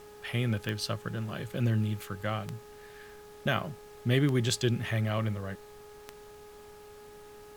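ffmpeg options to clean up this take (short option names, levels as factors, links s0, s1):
-af "adeclick=t=4,bandreject=f=417.7:t=h:w=4,bandreject=f=835.4:t=h:w=4,bandreject=f=1253.1:t=h:w=4,bandreject=f=1670.8:t=h:w=4,afftdn=nr=26:nf=-50"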